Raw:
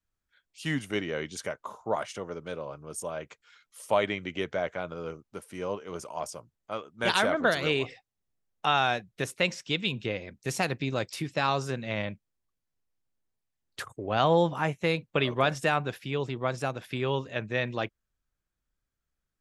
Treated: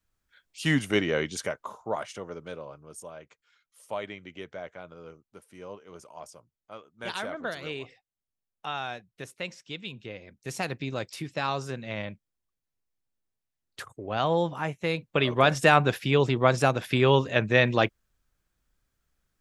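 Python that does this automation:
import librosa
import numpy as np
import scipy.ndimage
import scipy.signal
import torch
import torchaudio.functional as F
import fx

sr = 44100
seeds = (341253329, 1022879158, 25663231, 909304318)

y = fx.gain(x, sr, db=fx.line((1.17, 6.0), (1.92, -1.5), (2.43, -1.5), (3.22, -9.0), (10.04, -9.0), (10.68, -2.5), (14.79, -2.5), (15.83, 8.5)))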